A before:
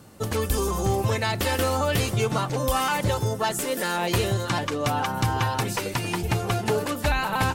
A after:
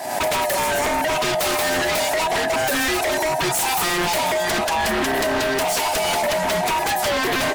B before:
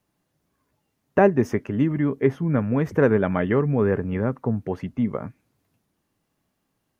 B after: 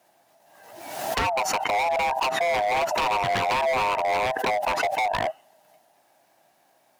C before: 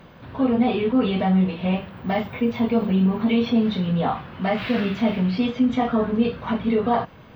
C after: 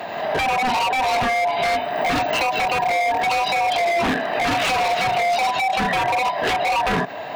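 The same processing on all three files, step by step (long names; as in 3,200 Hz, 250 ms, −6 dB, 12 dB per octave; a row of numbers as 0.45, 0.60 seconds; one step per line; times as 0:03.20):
neighbouring bands swapped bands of 500 Hz
Bessel high-pass filter 190 Hz, order 4
downward compressor 10 to 1, threshold −28 dBFS
wave folding −30.5 dBFS
background raised ahead of every attack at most 48 dB per second
normalise the peak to −12 dBFS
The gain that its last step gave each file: +14.5, +12.0, +15.5 decibels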